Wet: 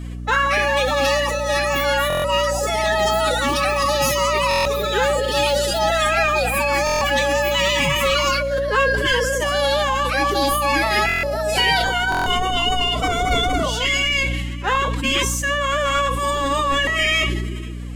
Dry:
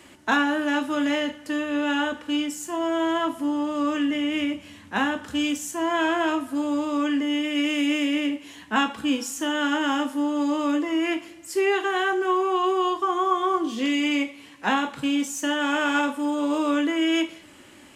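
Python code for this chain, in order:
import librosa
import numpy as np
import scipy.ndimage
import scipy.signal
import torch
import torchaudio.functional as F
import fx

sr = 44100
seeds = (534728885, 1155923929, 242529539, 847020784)

p1 = fx.vibrato(x, sr, rate_hz=4.9, depth_cents=7.7)
p2 = scipy.signal.sosfilt(scipy.signal.butter(2, 110.0, 'highpass', fs=sr, output='sos'), p1)
p3 = p2 + 10.0 ** (-20.5 / 20.0) * np.pad(p2, (int(491 * sr / 1000.0), 0))[:len(p2)]
p4 = fx.echo_pitch(p3, sr, ms=321, semitones=7, count=3, db_per_echo=-3.0)
p5 = np.clip(p4, -10.0 ** (-21.5 / 20.0), 10.0 ** (-21.5 / 20.0))
p6 = p4 + (p5 * 10.0 ** (-9.0 / 20.0))
p7 = fx.pitch_keep_formants(p6, sr, semitones=11.5)
p8 = fx.add_hum(p7, sr, base_hz=60, snr_db=10)
p9 = fx.buffer_glitch(p8, sr, at_s=(2.08, 4.49, 6.85, 11.07, 12.1), block=1024, repeats=6)
p10 = fx.sustainer(p9, sr, db_per_s=26.0)
y = p10 * 10.0 ** (1.0 / 20.0)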